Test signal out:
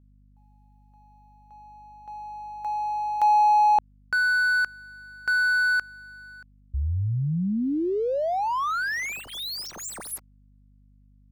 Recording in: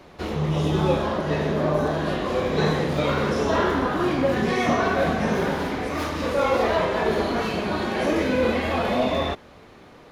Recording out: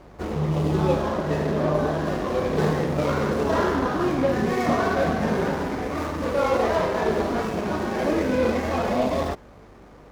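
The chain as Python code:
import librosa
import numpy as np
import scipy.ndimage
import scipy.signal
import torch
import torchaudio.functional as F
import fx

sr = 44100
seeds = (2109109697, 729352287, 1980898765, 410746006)

y = scipy.signal.medfilt(x, 15)
y = fx.add_hum(y, sr, base_hz=50, snr_db=30)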